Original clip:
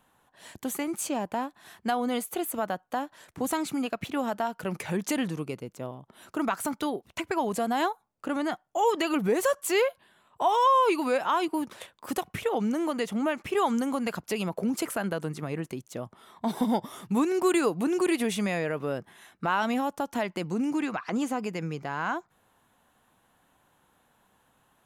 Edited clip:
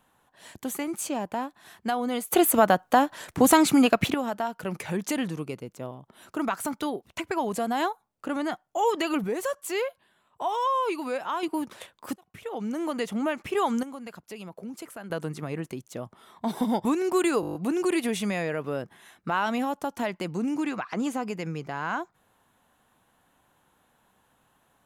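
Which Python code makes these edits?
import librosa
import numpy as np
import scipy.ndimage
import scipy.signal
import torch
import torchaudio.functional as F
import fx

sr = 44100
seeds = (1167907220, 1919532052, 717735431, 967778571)

y = fx.edit(x, sr, fx.clip_gain(start_s=2.32, length_s=1.82, db=11.0),
    fx.clip_gain(start_s=9.24, length_s=2.19, db=-4.5),
    fx.fade_in_span(start_s=12.16, length_s=0.8),
    fx.clip_gain(start_s=13.83, length_s=1.27, db=-10.5),
    fx.cut(start_s=16.85, length_s=0.3),
    fx.stutter(start_s=17.71, slice_s=0.02, count=8), tone=tone)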